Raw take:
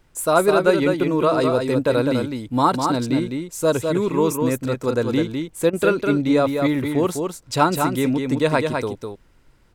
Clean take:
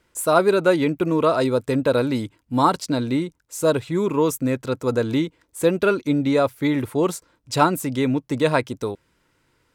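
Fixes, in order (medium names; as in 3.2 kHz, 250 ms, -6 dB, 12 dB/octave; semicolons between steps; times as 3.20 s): interpolate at 5.70 s, 30 ms; expander -40 dBFS, range -21 dB; inverse comb 204 ms -5 dB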